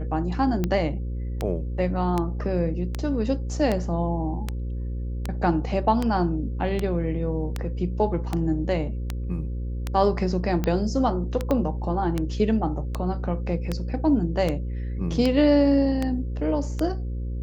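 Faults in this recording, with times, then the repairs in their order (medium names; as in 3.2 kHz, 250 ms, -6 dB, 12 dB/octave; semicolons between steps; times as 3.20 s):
buzz 60 Hz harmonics 9 -29 dBFS
tick 78 rpm -12 dBFS
11.51 s: pop -13 dBFS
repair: de-click; de-hum 60 Hz, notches 9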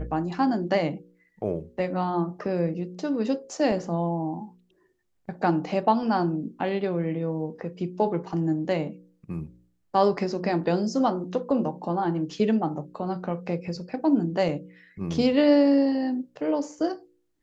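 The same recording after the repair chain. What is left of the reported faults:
11.51 s: pop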